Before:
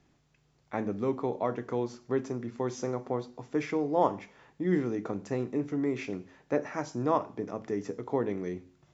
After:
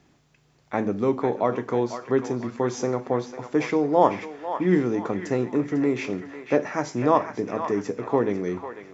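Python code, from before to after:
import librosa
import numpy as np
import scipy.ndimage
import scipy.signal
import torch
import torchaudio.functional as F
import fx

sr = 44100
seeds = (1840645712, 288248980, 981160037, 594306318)

p1 = fx.low_shelf(x, sr, hz=67.0, db=-8.0)
p2 = p1 + fx.echo_banded(p1, sr, ms=498, feedback_pct=57, hz=1800.0, wet_db=-6.5, dry=0)
y = p2 * 10.0 ** (7.5 / 20.0)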